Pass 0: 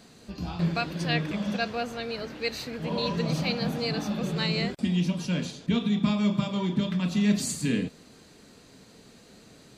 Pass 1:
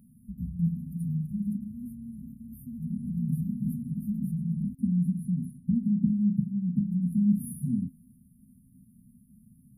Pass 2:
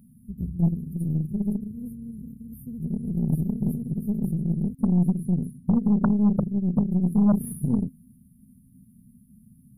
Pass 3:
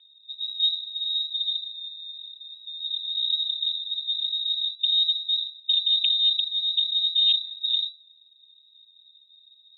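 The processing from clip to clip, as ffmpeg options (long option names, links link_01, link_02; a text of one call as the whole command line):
ffmpeg -i in.wav -af "afftfilt=real='re*(1-between(b*sr/4096,260,9400))':imag='im*(1-between(b*sr/4096,260,9400))':win_size=4096:overlap=0.75" out.wav
ffmpeg -i in.wav -af "aeval=exprs='0.237*(cos(1*acos(clip(val(0)/0.237,-1,1)))-cos(1*PI/2))+0.106*(cos(5*acos(clip(val(0)/0.237,-1,1)))-cos(5*PI/2))+0.0596*(cos(7*acos(clip(val(0)/0.237,-1,1)))-cos(7*PI/2))+0.0188*(cos(8*acos(clip(val(0)/0.237,-1,1)))-cos(8*PI/2))':channel_layout=same" out.wav
ffmpeg -i in.wav -af "lowpass=frequency=3300:width_type=q:width=0.5098,lowpass=frequency=3300:width_type=q:width=0.6013,lowpass=frequency=3300:width_type=q:width=0.9,lowpass=frequency=3300:width_type=q:width=2.563,afreqshift=-3900,volume=-2dB" out.wav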